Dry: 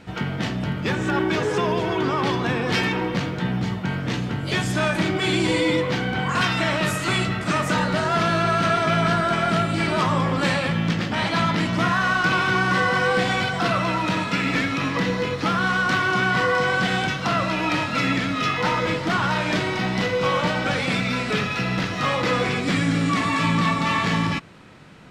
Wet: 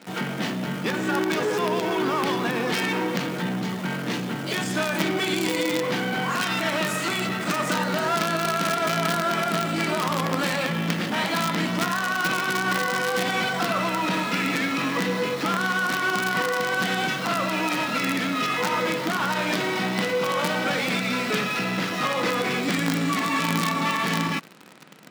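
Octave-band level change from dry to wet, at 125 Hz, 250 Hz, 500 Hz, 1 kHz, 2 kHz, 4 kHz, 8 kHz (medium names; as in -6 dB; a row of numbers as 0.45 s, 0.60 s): -7.0 dB, -3.0 dB, -2.0 dB, -2.5 dB, -2.5 dB, -1.0 dB, +3.0 dB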